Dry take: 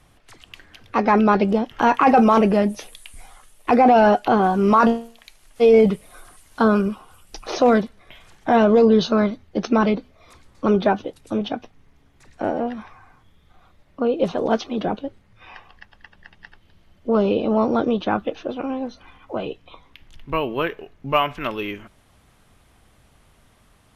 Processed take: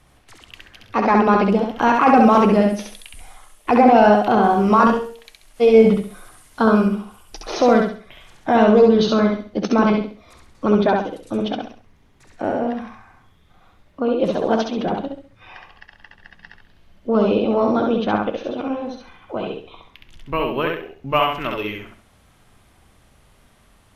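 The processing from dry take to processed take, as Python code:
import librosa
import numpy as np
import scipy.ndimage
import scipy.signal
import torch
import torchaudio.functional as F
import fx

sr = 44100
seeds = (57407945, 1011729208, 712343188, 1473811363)

y = fx.echo_feedback(x, sr, ms=67, feedback_pct=33, wet_db=-3.0)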